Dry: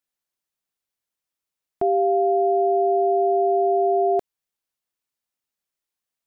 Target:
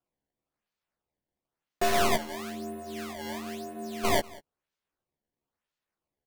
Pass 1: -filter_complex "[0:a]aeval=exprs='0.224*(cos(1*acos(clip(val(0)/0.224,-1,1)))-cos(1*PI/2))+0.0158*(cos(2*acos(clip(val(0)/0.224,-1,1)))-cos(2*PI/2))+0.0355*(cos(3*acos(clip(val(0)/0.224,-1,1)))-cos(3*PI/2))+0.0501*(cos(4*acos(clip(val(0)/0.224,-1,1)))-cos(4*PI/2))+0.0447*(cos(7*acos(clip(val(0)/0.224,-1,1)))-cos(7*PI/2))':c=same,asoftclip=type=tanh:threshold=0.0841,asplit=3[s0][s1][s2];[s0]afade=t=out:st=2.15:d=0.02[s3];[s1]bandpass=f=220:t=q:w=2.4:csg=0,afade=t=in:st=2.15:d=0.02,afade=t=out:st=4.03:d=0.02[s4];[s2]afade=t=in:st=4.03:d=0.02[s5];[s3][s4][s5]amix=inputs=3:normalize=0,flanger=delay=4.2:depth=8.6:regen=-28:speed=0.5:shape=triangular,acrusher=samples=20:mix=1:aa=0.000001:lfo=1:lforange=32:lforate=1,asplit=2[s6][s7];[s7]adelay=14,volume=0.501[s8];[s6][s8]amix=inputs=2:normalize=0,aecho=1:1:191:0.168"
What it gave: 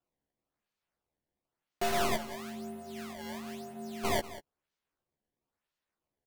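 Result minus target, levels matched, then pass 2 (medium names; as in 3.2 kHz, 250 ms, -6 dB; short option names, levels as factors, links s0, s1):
saturation: distortion +13 dB; echo-to-direct +6.5 dB
-filter_complex "[0:a]aeval=exprs='0.224*(cos(1*acos(clip(val(0)/0.224,-1,1)))-cos(1*PI/2))+0.0158*(cos(2*acos(clip(val(0)/0.224,-1,1)))-cos(2*PI/2))+0.0355*(cos(3*acos(clip(val(0)/0.224,-1,1)))-cos(3*PI/2))+0.0501*(cos(4*acos(clip(val(0)/0.224,-1,1)))-cos(4*PI/2))+0.0447*(cos(7*acos(clip(val(0)/0.224,-1,1)))-cos(7*PI/2))':c=same,asoftclip=type=tanh:threshold=0.266,asplit=3[s0][s1][s2];[s0]afade=t=out:st=2.15:d=0.02[s3];[s1]bandpass=f=220:t=q:w=2.4:csg=0,afade=t=in:st=2.15:d=0.02,afade=t=out:st=4.03:d=0.02[s4];[s2]afade=t=in:st=4.03:d=0.02[s5];[s3][s4][s5]amix=inputs=3:normalize=0,flanger=delay=4.2:depth=8.6:regen=-28:speed=0.5:shape=triangular,acrusher=samples=20:mix=1:aa=0.000001:lfo=1:lforange=32:lforate=1,asplit=2[s6][s7];[s7]adelay=14,volume=0.501[s8];[s6][s8]amix=inputs=2:normalize=0,aecho=1:1:191:0.0794"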